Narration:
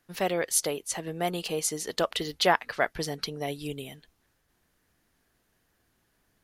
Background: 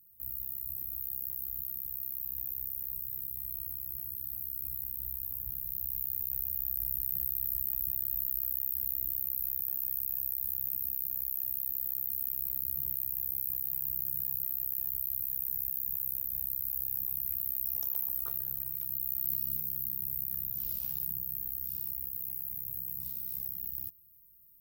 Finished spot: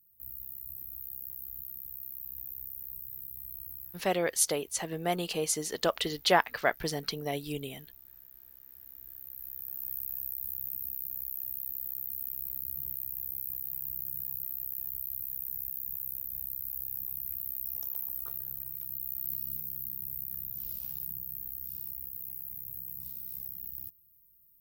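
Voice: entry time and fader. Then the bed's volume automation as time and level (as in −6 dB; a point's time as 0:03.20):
3.85 s, −1.0 dB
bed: 0:03.85 −4.5 dB
0:04.06 −20.5 dB
0:08.59 −20.5 dB
0:09.92 −3 dB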